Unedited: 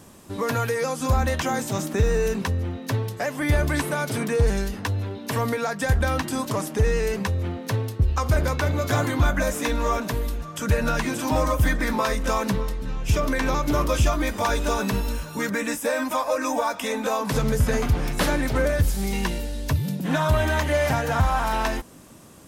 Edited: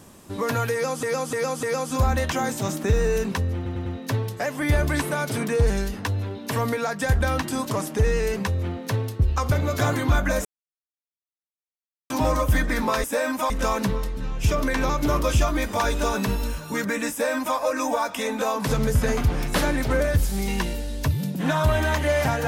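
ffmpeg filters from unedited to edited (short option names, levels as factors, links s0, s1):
-filter_complex "[0:a]asplit=12[s0][s1][s2][s3][s4][s5][s6][s7][s8][s9][s10][s11];[s0]atrim=end=1.032[s12];[s1]atrim=start=0.728:end=1.032[s13];[s2]atrim=start=0.728:end=1.032[s14];[s3]atrim=start=0.728:end=2.762[s15];[s4]atrim=start=2.658:end=2.762[s16];[s5]atrim=start=2.658:end=2.762[s17];[s6]atrim=start=2.658:end=8.322[s18];[s7]atrim=start=8.628:end=9.56,asetpts=PTS-STARTPTS,afade=t=out:st=0.928:d=0.004:c=hsin[s19];[s8]atrim=start=9.56:end=11.21,asetpts=PTS-STARTPTS,volume=0[s20];[s9]atrim=start=11.21:end=12.152,asetpts=PTS-STARTPTS,afade=t=in:d=0.004:c=hsin[s21];[s10]atrim=start=15.758:end=16.222[s22];[s11]atrim=start=12.148[s23];[s12][s13]acrossfade=d=0.004:c1=hsin:c2=hsin[s24];[s24][s14]acrossfade=d=0.004:c1=hsin:c2=hsin[s25];[s25][s15]acrossfade=d=0.004:c1=hsin:c2=hsin[s26];[s26][s16]acrossfade=d=0.004:c1=hsin:c2=hsin[s27];[s27][s17]acrossfade=d=0.004:c1=hsin:c2=hsin[s28];[s28][s18]acrossfade=d=0.004:c1=hsin:c2=hsin[s29];[s19][s20][s21]concat=n=3:v=0:a=1[s30];[s29][s30]acrossfade=d=0.004:c1=hsin:c2=hsin[s31];[s31][s22]acrossfade=d=0.004:c1=hsin:c2=hsin[s32];[s32][s23]acrossfade=d=0.004:c1=hsin:c2=hsin"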